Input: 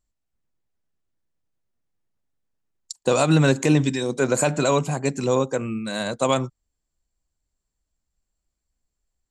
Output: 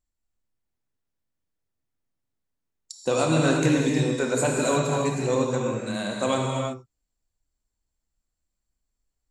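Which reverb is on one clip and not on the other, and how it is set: gated-style reverb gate 380 ms flat, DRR -1 dB; trim -5.5 dB

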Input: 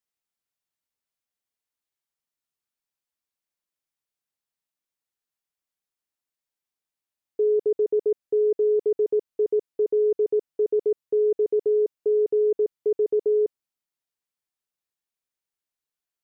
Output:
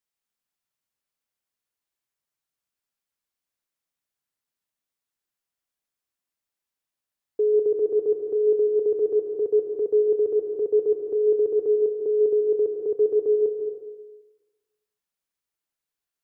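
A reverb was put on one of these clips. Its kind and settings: plate-style reverb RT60 1.2 s, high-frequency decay 0.55×, pre-delay 120 ms, DRR 2.5 dB

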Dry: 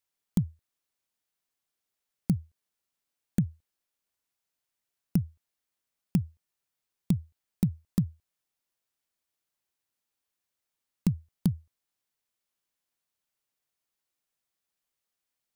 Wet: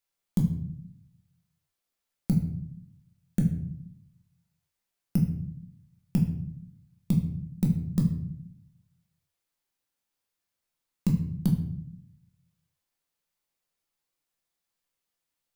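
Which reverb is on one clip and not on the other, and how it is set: simulated room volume 130 m³, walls mixed, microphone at 0.86 m; trim -1.5 dB

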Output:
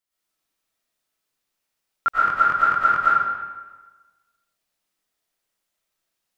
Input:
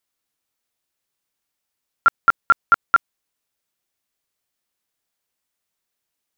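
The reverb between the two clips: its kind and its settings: algorithmic reverb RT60 1.3 s, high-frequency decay 0.8×, pre-delay 75 ms, DRR -9 dB; trim -7 dB

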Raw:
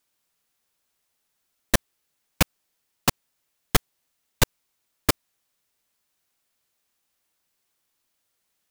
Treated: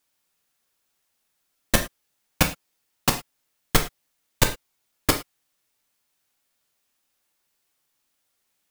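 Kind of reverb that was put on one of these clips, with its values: gated-style reverb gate 130 ms falling, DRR 3.5 dB

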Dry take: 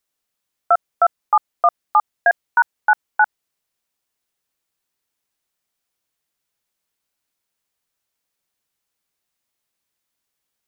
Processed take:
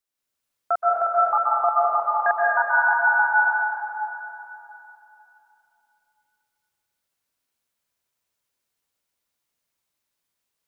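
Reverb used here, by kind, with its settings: plate-style reverb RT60 3.1 s, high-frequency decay 0.8×, pre-delay 115 ms, DRR -6.5 dB; trim -8 dB

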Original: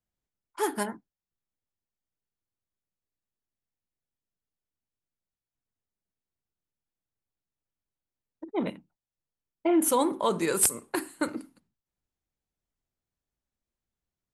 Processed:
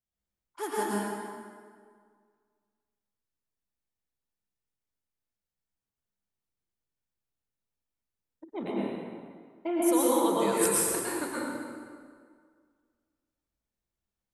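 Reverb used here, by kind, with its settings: plate-style reverb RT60 1.9 s, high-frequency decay 0.7×, pre-delay 95 ms, DRR -6.5 dB; trim -7.5 dB

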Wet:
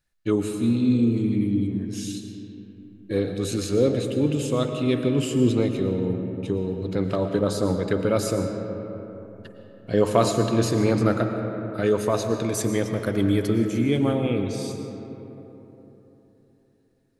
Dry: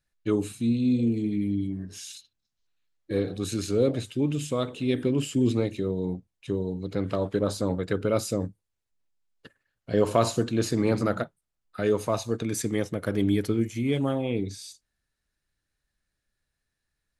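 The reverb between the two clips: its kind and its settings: algorithmic reverb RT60 3.7 s, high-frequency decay 0.4×, pre-delay 75 ms, DRR 5.5 dB; trim +2.5 dB

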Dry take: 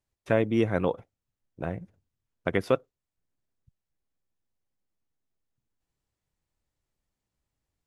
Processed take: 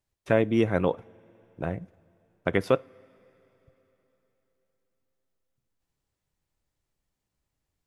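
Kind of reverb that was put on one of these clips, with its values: two-slope reverb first 0.32 s, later 3.9 s, from -18 dB, DRR 19.5 dB; trim +1.5 dB

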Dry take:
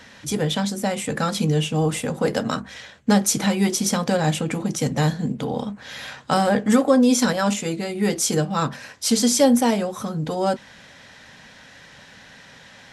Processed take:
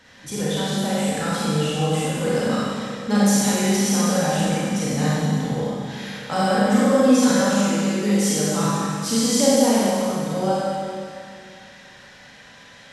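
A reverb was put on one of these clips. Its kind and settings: Schroeder reverb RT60 2.3 s, combs from 31 ms, DRR -8 dB; trim -8 dB

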